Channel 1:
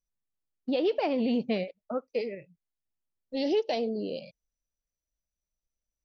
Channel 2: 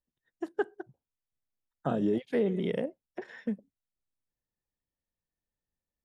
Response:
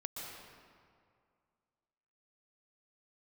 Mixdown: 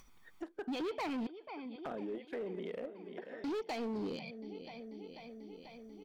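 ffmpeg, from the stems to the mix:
-filter_complex "[0:a]aecho=1:1:0.9:0.88,alimiter=level_in=4.5dB:limit=-24dB:level=0:latency=1:release=142,volume=-4.5dB,volume=3dB,asplit=3[link_01][link_02][link_03];[link_01]atrim=end=1.27,asetpts=PTS-STARTPTS,afade=type=out:start_time=1.266:duration=0.004:curve=hsin[link_04];[link_02]atrim=start=1.27:end=3.44,asetpts=PTS-STARTPTS,volume=0[link_05];[link_03]atrim=start=3.44,asetpts=PTS-STARTPTS,afade=type=in:duration=0.004:curve=hsin[link_06];[link_04][link_05][link_06]concat=n=3:v=0:a=1,asplit=2[link_07][link_08];[link_08]volume=-18dB[link_09];[1:a]equalizer=frequency=110:width_type=o:width=1:gain=-13.5,alimiter=level_in=2dB:limit=-24dB:level=0:latency=1:release=26,volume=-2dB,volume=-6dB,afade=type=out:start_time=3:duration=0.25:silence=0.316228,asplit=2[link_10][link_11];[link_11]volume=-15.5dB[link_12];[link_09][link_12]amix=inputs=2:normalize=0,aecho=0:1:490|980|1470|1960|2450|2940|3430|3920:1|0.54|0.292|0.157|0.085|0.0459|0.0248|0.0134[link_13];[link_07][link_10][link_13]amix=inputs=3:normalize=0,acompressor=mode=upward:threshold=-34dB:ratio=2.5,bass=frequency=250:gain=-8,treble=frequency=4000:gain=-12,asoftclip=type=hard:threshold=-34.5dB"

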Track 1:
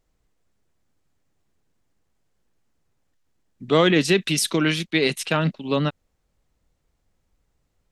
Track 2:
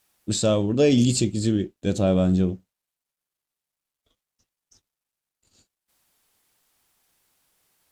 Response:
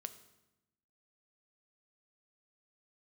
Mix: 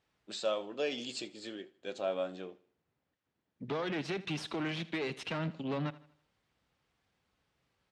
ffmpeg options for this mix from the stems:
-filter_complex "[0:a]acompressor=threshold=-24dB:ratio=6,aeval=exprs='(tanh(28.2*val(0)+0.6)-tanh(0.6))/28.2':channel_layout=same,volume=-1.5dB,asplit=2[link_01][link_02];[link_02]volume=-18dB[link_03];[1:a]highpass=670,flanger=delay=4.5:depth=3.4:regen=65:speed=0.27:shape=triangular,volume=-2dB,asplit=2[link_04][link_05];[link_05]volume=-21.5dB[link_06];[link_03][link_06]amix=inputs=2:normalize=0,aecho=0:1:79|158|237|316|395|474:1|0.41|0.168|0.0689|0.0283|0.0116[link_07];[link_01][link_04][link_07]amix=inputs=3:normalize=0,highpass=100,lowpass=3500"

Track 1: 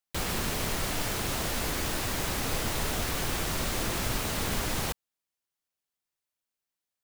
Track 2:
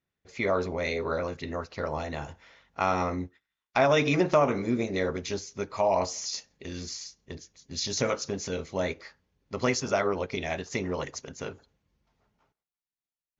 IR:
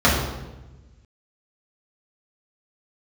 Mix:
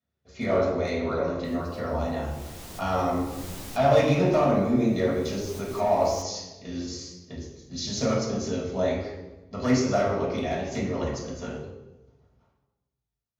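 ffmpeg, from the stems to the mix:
-filter_complex "[0:a]adelay=1300,volume=9dB,afade=type=in:start_time=2.16:duration=0.79:silence=0.266073,afade=type=out:start_time=3.75:duration=0.43:silence=0.298538,afade=type=in:start_time=4.98:duration=0.69:silence=0.266073[link_01];[1:a]lowshelf=frequency=370:gain=-7,volume=21dB,asoftclip=hard,volume=-21dB,volume=-3.5dB,asplit=3[link_02][link_03][link_04];[link_03]volume=-9.5dB[link_05];[link_04]apad=whole_len=367443[link_06];[link_01][link_06]sidechaincompress=threshold=-46dB:ratio=4:attack=41:release=300[link_07];[2:a]atrim=start_sample=2205[link_08];[link_05][link_08]afir=irnorm=-1:irlink=0[link_09];[link_07][link_02][link_09]amix=inputs=3:normalize=0,equalizer=frequency=1600:width_type=o:width=2.1:gain=-6,flanger=delay=9.6:depth=9.6:regen=64:speed=1.1:shape=sinusoidal"

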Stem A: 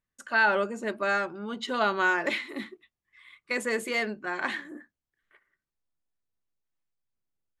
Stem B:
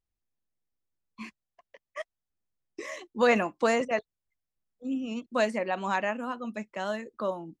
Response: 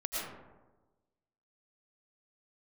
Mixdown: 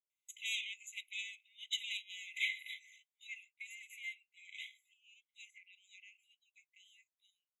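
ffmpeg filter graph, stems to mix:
-filter_complex "[0:a]adelay=100,volume=2dB[link_01];[1:a]volume=-16dB,asplit=2[link_02][link_03];[link_03]apad=whole_len=339576[link_04];[link_01][link_04]sidechaincompress=threshold=-55dB:ratio=5:attack=9.2:release=1090[link_05];[link_05][link_02]amix=inputs=2:normalize=0,aeval=exprs='(tanh(11.2*val(0)+0.25)-tanh(0.25))/11.2':channel_layout=same,afftfilt=real='re*eq(mod(floor(b*sr/1024/2000),2),1)':imag='im*eq(mod(floor(b*sr/1024/2000),2),1)':win_size=1024:overlap=0.75"

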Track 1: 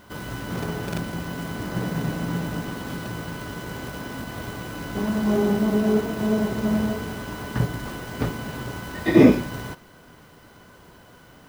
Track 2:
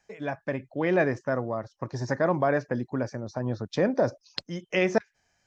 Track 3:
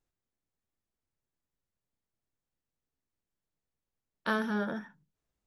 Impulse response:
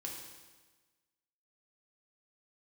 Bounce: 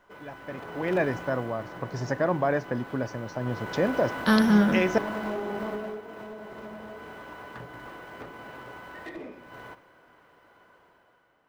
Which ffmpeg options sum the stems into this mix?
-filter_complex "[0:a]acrossover=split=380 2700:gain=0.178 1 0.178[link_01][link_02][link_03];[link_01][link_02][link_03]amix=inputs=3:normalize=0,acompressor=threshold=-32dB:ratio=10,volume=30dB,asoftclip=hard,volume=-30dB,volume=-1dB,afade=type=out:start_time=1.06:duration=0.44:silence=0.473151,afade=type=in:start_time=3.38:duration=0.49:silence=0.334965,afade=type=out:start_time=5.65:duration=0.4:silence=0.334965,asplit=2[link_04][link_05];[link_05]volume=-8dB[link_06];[1:a]volume=-11.5dB[link_07];[2:a]bass=frequency=250:gain=14,treble=frequency=4000:gain=10,volume=-5.5dB[link_08];[3:a]atrim=start_sample=2205[link_09];[link_06][link_09]afir=irnorm=-1:irlink=0[link_10];[link_04][link_07][link_08][link_10]amix=inputs=4:normalize=0,dynaudnorm=framelen=140:gausssize=11:maxgain=10.5dB"

